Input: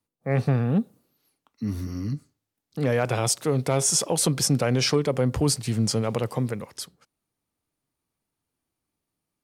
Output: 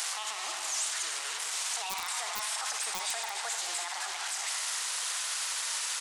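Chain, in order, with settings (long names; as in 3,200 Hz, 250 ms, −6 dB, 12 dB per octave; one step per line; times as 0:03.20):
linear delta modulator 32 kbit/s, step −28.5 dBFS
high-pass filter 550 Hz 24 dB per octave
single-tap delay 462 ms −13 dB
convolution reverb RT60 2.0 s, pre-delay 35 ms, DRR 5 dB
change of speed 1.57×
dynamic equaliser 710 Hz, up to −4 dB, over −40 dBFS, Q 1.3
wrap-around overflow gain 18 dB
brickwall limiter −28.5 dBFS, peak gain reduction 10.5 dB
high-shelf EQ 3,500 Hz +7.5 dB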